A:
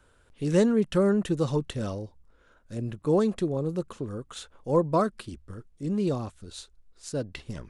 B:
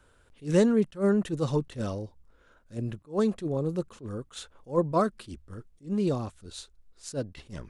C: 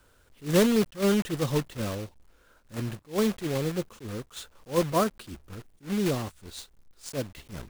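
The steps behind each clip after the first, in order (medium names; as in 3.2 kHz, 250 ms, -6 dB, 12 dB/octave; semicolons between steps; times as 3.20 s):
attacks held to a fixed rise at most 260 dB/s
block-companded coder 3-bit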